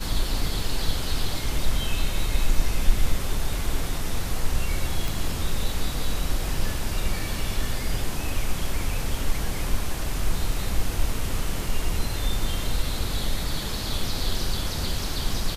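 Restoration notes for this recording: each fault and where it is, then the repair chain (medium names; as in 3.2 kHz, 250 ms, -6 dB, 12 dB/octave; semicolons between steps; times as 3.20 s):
5.08 s: pop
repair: de-click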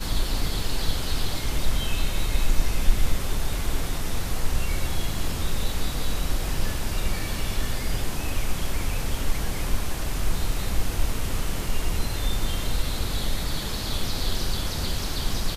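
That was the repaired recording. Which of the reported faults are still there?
nothing left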